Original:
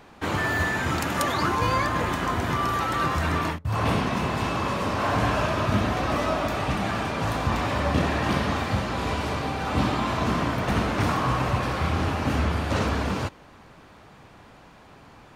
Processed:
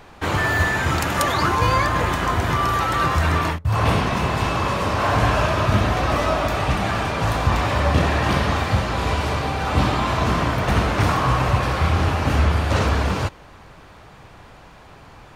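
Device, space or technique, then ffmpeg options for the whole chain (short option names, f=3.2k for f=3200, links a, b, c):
low shelf boost with a cut just above: -af "lowshelf=f=67:g=7.5,equalizer=f=240:t=o:w=0.93:g=-5,volume=5dB"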